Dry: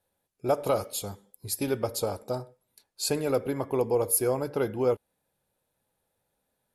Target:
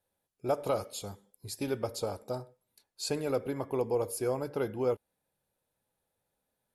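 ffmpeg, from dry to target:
-filter_complex "[0:a]acrossover=split=8800[a][b];[b]acompressor=threshold=-48dB:ratio=4:attack=1:release=60[c];[a][c]amix=inputs=2:normalize=0,volume=-4.5dB"

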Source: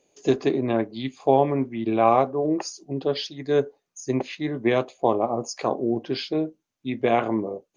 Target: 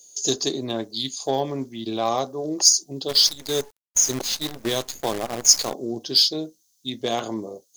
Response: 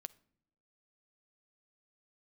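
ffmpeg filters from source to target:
-filter_complex "[0:a]acontrast=22,aexciter=amount=11.4:drive=9.2:freq=3.7k,asplit=3[a][b][c];[a]afade=t=out:st=3.08:d=0.02[d];[b]acrusher=bits=4:dc=4:mix=0:aa=0.000001,afade=t=in:st=3.08:d=0.02,afade=t=out:st=5.72:d=0.02[e];[c]afade=t=in:st=5.72:d=0.02[f];[d][e][f]amix=inputs=3:normalize=0,volume=-9.5dB"

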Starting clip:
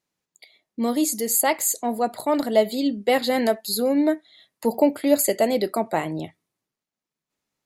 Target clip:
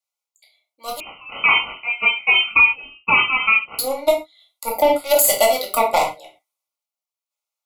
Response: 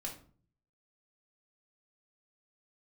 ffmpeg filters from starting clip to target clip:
-filter_complex "[0:a]highpass=f=630:w=0.5412,highpass=f=630:w=1.3066,dynaudnorm=f=130:g=11:m=4dB,aeval=exprs='0.631*(cos(1*acos(clip(val(0)/0.631,-1,1)))-cos(1*PI/2))+0.0794*(cos(7*acos(clip(val(0)/0.631,-1,1)))-cos(7*PI/2))':c=same,crystalizer=i=1:c=0,asoftclip=type=tanh:threshold=-8dB[a];[1:a]atrim=start_sample=2205,atrim=end_sample=6174[b];[a][b]afir=irnorm=-1:irlink=0,asettb=1/sr,asplit=3[c][d][e];[c]atrim=end=1.004[f];[d]atrim=start=1:end=3.79,asetpts=PTS-STARTPTS,afade=t=in:d=0.004:c=qsin,afade=t=out:st=2.786:d=0.004:c=qsin,lowpass=f=2.6k:t=q:w=0.5098,lowpass=f=2.6k:t=q:w=0.6013,lowpass=f=2.6k:t=q:w=0.9,lowpass=f=2.6k:t=q:w=2.563,afreqshift=-3100[g];[e]atrim=start=3.786[h];[f][g]acrossfade=d=0.004:c1=hsin:c2=qsin[i];[i][h]acrossfade=d=0.004:c1=qsin:c2=hsin,asuperstop=centerf=1700:order=20:qfactor=3.2,alimiter=level_in=17dB:limit=-1dB:release=50:level=0:latency=1,volume=-4dB"

